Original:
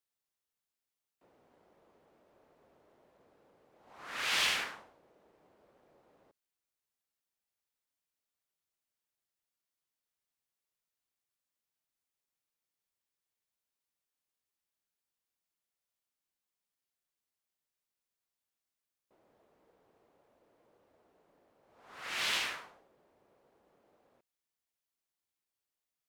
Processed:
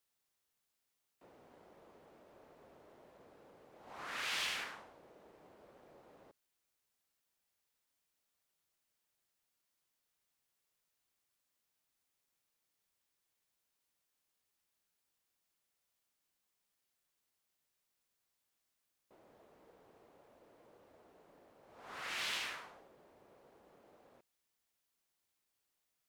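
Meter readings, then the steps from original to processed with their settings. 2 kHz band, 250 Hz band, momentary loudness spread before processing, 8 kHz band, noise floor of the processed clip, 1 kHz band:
-6.0 dB, -2.0 dB, 18 LU, -6.5 dB, -85 dBFS, -4.5 dB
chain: compressor 2:1, threshold -52 dBFS, peak gain reduction 14 dB; gain +5.5 dB

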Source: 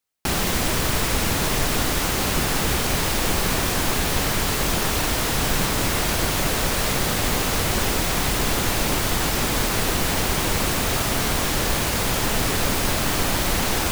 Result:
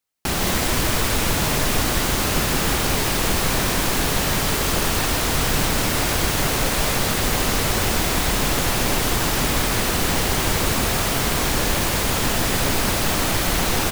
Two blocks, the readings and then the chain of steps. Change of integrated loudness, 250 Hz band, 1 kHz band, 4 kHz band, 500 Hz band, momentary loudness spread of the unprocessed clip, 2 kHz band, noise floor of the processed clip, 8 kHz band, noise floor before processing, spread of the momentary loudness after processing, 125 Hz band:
+1.5 dB, +1.5 dB, +1.5 dB, +1.5 dB, +1.5 dB, 0 LU, +1.5 dB, -22 dBFS, +1.5 dB, -23 dBFS, 0 LU, +1.5 dB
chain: echo 0.158 s -4 dB

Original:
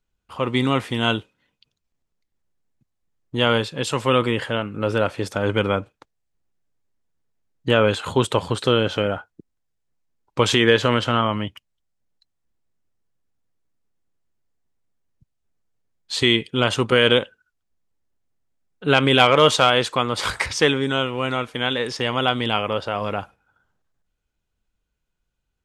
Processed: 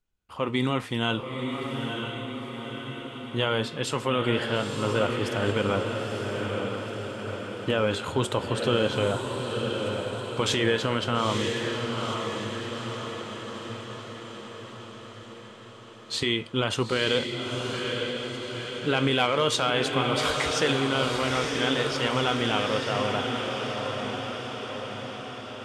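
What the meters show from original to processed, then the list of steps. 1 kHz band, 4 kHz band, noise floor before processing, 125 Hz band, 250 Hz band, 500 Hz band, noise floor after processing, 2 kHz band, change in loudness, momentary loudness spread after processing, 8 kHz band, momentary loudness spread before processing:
-5.0 dB, -5.0 dB, -77 dBFS, -4.0 dB, -4.0 dB, -5.0 dB, -43 dBFS, -5.0 dB, -7.5 dB, 13 LU, -2.5 dB, 11 LU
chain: limiter -8.5 dBFS, peak gain reduction 6.5 dB; flange 0.42 Hz, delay 9.9 ms, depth 5.2 ms, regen -76%; diffused feedback echo 0.929 s, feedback 62%, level -4 dB

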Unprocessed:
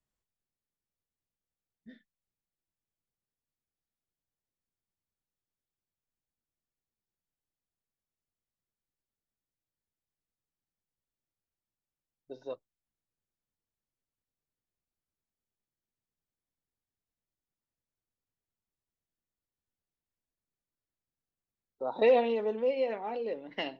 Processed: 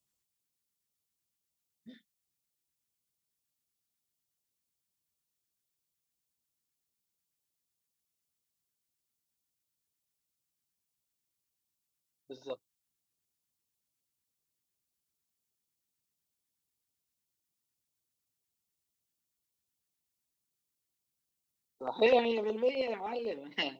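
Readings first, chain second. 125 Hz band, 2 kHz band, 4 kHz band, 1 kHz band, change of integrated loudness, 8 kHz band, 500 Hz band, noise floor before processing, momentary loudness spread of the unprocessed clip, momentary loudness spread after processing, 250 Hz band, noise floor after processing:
0.0 dB, +2.5 dB, +5.0 dB, -1.0 dB, -1.5 dB, n/a, -2.5 dB, under -85 dBFS, 19 LU, 18 LU, 0.0 dB, under -85 dBFS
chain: HPF 69 Hz; high shelf 3000 Hz +11 dB; LFO notch square 8 Hz 600–1700 Hz

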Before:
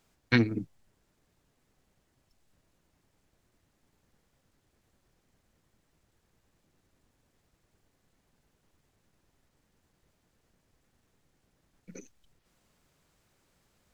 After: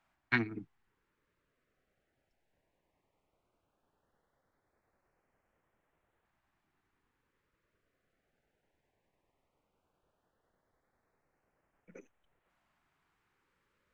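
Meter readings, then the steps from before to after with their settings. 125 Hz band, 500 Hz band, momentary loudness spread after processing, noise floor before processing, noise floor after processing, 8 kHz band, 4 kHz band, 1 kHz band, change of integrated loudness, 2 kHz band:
-12.0 dB, -10.0 dB, 12 LU, -74 dBFS, -82 dBFS, n/a, -10.5 dB, -1.5 dB, -6.0 dB, -2.0 dB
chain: three-band isolator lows -12 dB, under 420 Hz, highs -18 dB, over 2600 Hz; LFO notch saw up 0.16 Hz 440–5400 Hz

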